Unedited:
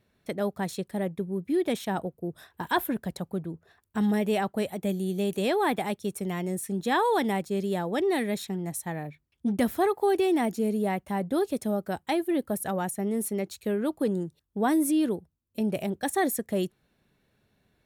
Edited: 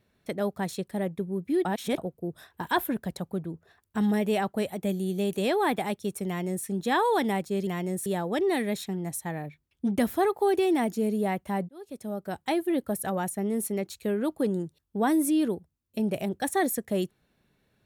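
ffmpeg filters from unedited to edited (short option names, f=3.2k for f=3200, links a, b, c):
-filter_complex "[0:a]asplit=6[a][b][c][d][e][f];[a]atrim=end=1.652[g];[b]atrim=start=1.648:end=1.982,asetpts=PTS-STARTPTS,areverse[h];[c]atrim=start=1.978:end=7.672[i];[d]atrim=start=6.268:end=6.662[j];[e]atrim=start=7.668:end=11.3,asetpts=PTS-STARTPTS,afade=t=out:st=3.628:d=0.004:c=hsin[k];[f]atrim=start=11.3,asetpts=PTS-STARTPTS,afade=t=in:d=0.83[l];[g][h]acrossfade=d=0.004:c1=hsin:c2=hsin[m];[m][i]acrossfade=d=0.004:c1=hsin:c2=hsin[n];[n][j]acrossfade=d=0.004:c1=hsin:c2=hsin[o];[k][l]concat=n=2:v=0:a=1[p];[o][p]acrossfade=d=0.004:c1=hsin:c2=hsin"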